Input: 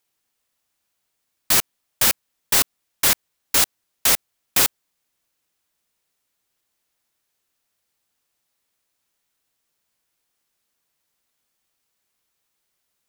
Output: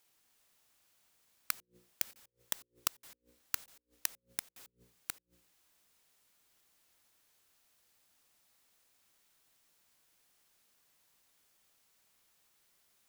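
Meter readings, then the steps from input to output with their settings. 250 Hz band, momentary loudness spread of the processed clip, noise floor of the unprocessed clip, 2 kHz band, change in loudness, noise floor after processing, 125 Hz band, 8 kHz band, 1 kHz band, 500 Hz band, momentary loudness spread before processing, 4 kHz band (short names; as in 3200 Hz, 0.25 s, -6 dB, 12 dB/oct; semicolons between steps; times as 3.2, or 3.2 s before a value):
-25.5 dB, 19 LU, -76 dBFS, -21.5 dB, -21.0 dB, -83 dBFS, -24.5 dB, -21.5 dB, -21.0 dB, -26.5 dB, 4 LU, -22.5 dB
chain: reverse delay 0.305 s, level -6 dB; notches 60/120/180/240/300/360/420/480/540 Hz; flipped gate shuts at -16 dBFS, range -42 dB; gain +2.5 dB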